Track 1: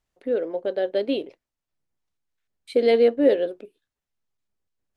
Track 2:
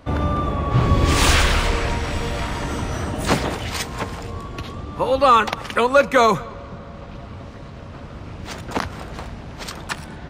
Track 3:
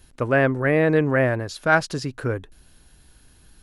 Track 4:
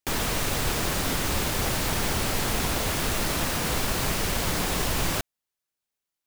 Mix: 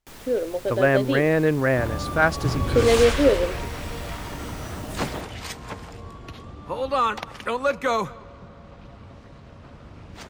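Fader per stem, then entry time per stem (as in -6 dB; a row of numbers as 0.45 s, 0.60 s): 0.0 dB, -8.5 dB, -1.5 dB, -16.5 dB; 0.00 s, 1.70 s, 0.50 s, 0.00 s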